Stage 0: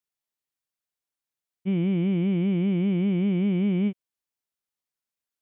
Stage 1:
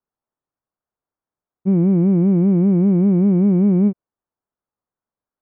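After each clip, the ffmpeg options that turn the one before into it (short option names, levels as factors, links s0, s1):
-af "lowpass=f=1300:w=0.5412,lowpass=f=1300:w=1.3066,volume=2.82"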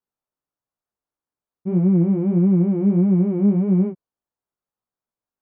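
-af "flanger=delay=16:depth=3.8:speed=1.6"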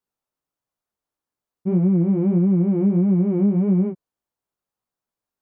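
-af "acompressor=threshold=0.141:ratio=6,volume=1.33"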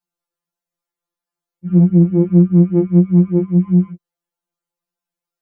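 -af "afftfilt=real='re*2.83*eq(mod(b,8),0)':imag='im*2.83*eq(mod(b,8),0)':win_size=2048:overlap=0.75,volume=1.41"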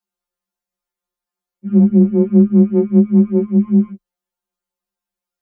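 -af "afreqshift=22"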